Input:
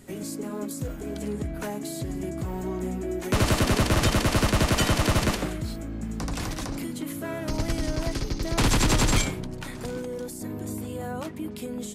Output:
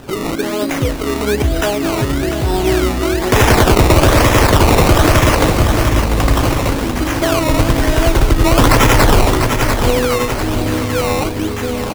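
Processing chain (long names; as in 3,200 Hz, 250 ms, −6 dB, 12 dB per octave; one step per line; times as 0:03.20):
rippled gain that drifts along the octave scale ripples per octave 1, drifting −0.9 Hz, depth 7 dB
parametric band 190 Hz −13 dB 0.53 octaves
sample-and-hold swept by an LFO 19×, swing 100% 1.1 Hz
on a send: repeating echo 694 ms, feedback 54%, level −10 dB
on the sum: boost into a limiter +17.5 dB
level −1 dB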